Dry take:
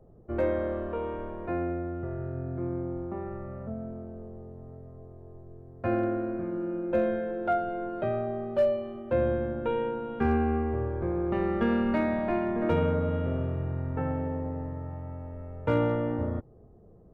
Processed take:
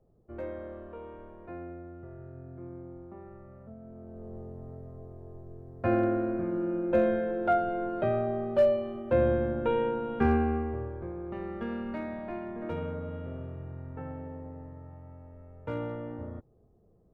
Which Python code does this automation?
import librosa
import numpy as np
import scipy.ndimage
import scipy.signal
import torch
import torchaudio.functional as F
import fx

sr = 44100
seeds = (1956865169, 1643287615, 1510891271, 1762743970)

y = fx.gain(x, sr, db=fx.line((3.8, -11.0), (4.35, 1.5), (10.24, 1.5), (11.16, -9.5)))